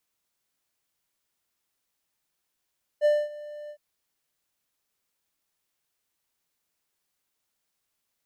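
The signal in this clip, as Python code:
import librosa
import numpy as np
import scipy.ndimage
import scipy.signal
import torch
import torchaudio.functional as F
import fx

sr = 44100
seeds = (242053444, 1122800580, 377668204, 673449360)

y = fx.adsr_tone(sr, wave='triangle', hz=594.0, attack_ms=42.0, decay_ms=233.0, sustain_db=-20.5, held_s=0.69, release_ms=72.0, level_db=-14.5)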